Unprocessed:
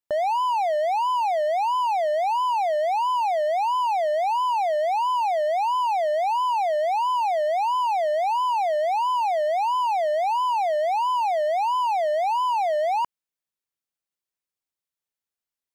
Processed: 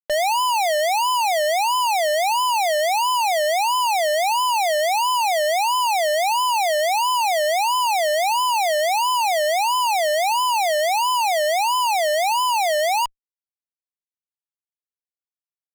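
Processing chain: spectral contrast enhancement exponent 2.6; fuzz box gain 56 dB, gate -57 dBFS; trim -6 dB

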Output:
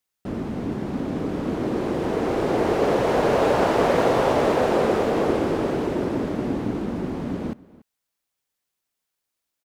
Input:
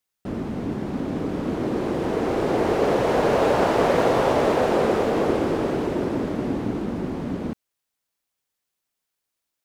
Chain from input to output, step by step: echo from a far wall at 49 m, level -21 dB

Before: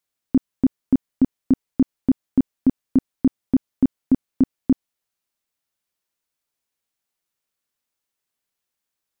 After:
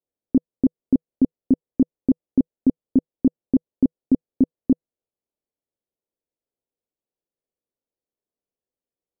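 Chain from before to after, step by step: FFT filter 160 Hz 0 dB, 490 Hz +7 dB, 1.7 kHz -20 dB; trim -3.5 dB

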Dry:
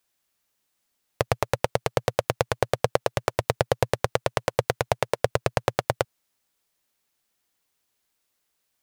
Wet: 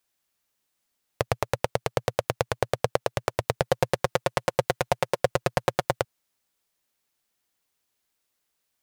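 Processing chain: 3.61–6.00 s: comb 5.6 ms, depth 67%; trim -2 dB

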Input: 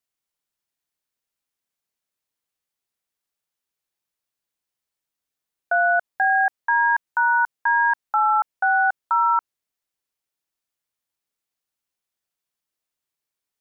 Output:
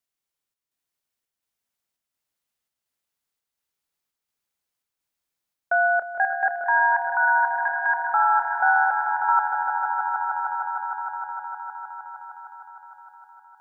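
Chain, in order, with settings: square tremolo 1.4 Hz, depth 65%, duty 75%; echo with a slow build-up 154 ms, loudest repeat 5, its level -9 dB; trim -1 dB

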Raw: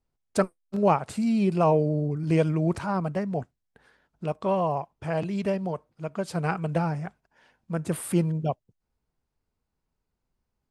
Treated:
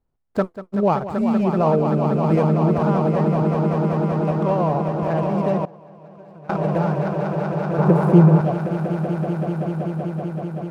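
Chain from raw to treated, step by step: median filter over 15 samples; treble shelf 3.2 kHz -9 dB; echo with a slow build-up 191 ms, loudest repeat 5, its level -8.5 dB; in parallel at -2 dB: peak limiter -18 dBFS, peak gain reduction 9.5 dB; 5.65–6.60 s: on the sum: gate with hold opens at -10 dBFS; 7.78–8.41 s: fifteen-band graphic EQ 160 Hz +8 dB, 400 Hz +8 dB, 1 kHz +9 dB

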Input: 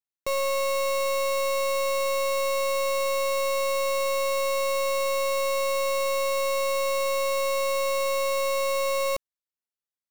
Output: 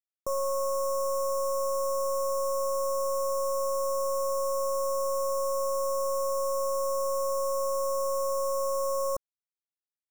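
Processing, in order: short-mantissa float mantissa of 2-bit; Chebyshev band-stop 1.4–5.6 kHz, order 5; crossover distortion -59 dBFS; trim -3 dB

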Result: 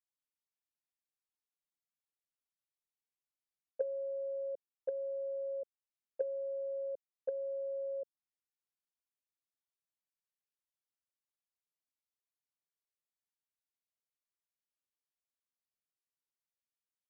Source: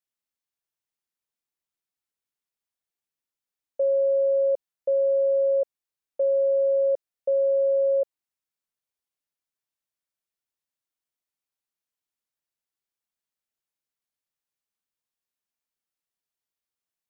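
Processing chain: low-pass that closes with the level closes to 430 Hz, closed at -23 dBFS; gate -22 dBFS, range -23 dB; trim +11.5 dB

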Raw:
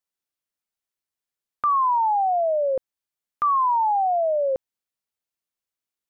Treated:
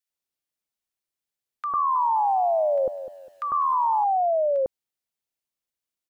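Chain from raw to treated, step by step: bands offset in time highs, lows 100 ms, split 1.3 kHz; 1.75–4.04 s: bit-crushed delay 202 ms, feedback 35%, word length 9-bit, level -12 dB

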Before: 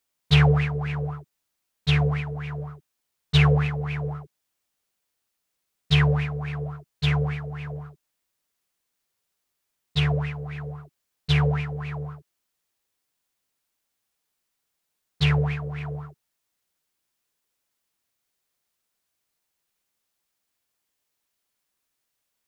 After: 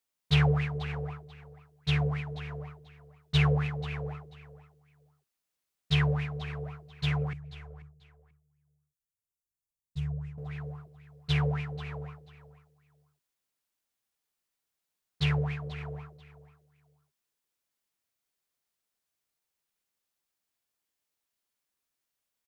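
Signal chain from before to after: 7.33–10.38 s: FFT filter 110 Hz 0 dB, 310 Hz -16 dB, 4.1 kHz -19 dB, 6.9 kHz -8 dB; on a send: feedback delay 488 ms, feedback 22%, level -16 dB; on the sum: trim -6.5 dB

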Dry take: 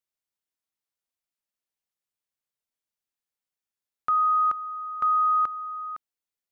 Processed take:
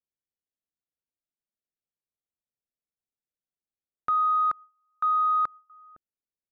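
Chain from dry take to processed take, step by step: local Wiener filter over 41 samples; 4.14–5.70 s: gate with hold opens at -47 dBFS

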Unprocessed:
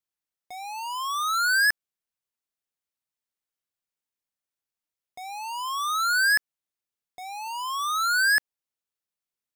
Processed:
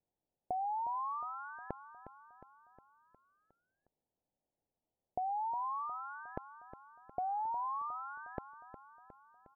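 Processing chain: steep low-pass 850 Hz 48 dB/octave; compression, threshold -47 dBFS, peak gain reduction 9 dB; feedback delay 360 ms, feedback 57%, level -12.5 dB; trim +11.5 dB

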